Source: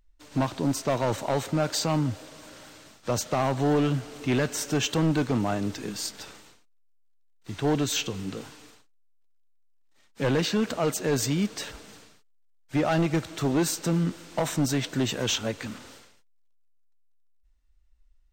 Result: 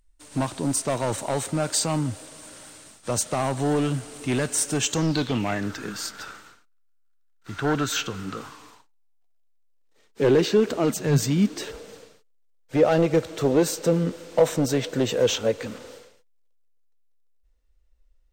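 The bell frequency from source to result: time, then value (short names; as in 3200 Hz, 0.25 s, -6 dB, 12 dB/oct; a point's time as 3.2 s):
bell +15 dB 0.49 oct
4.8 s 9000 Hz
5.72 s 1400 Hz
8.19 s 1400 Hz
10.24 s 390 Hz
10.77 s 390 Hz
11.05 s 120 Hz
11.78 s 490 Hz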